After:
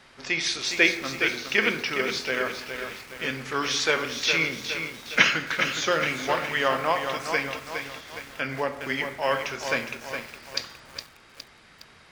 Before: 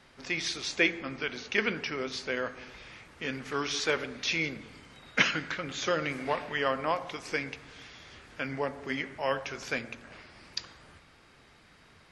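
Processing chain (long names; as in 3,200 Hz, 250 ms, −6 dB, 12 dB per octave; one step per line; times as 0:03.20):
low-shelf EQ 410 Hz −5.5 dB
convolution reverb, pre-delay 3 ms, DRR 10 dB
feedback echo at a low word length 413 ms, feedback 55%, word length 8 bits, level −7 dB
level +6 dB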